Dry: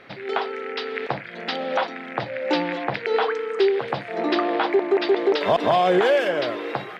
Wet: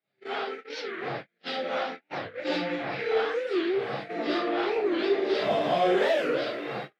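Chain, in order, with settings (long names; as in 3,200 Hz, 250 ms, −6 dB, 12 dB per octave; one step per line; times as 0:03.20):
random phases in long frames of 200 ms
noise gate −30 dBFS, range −39 dB
high-pass filter 130 Hz
in parallel at −8 dB: soft clipping −20.5 dBFS, distortion −10 dB
on the sum: parametric band 950 Hz −10 dB 0.27 octaves
wow of a warped record 45 rpm, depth 250 cents
level −6.5 dB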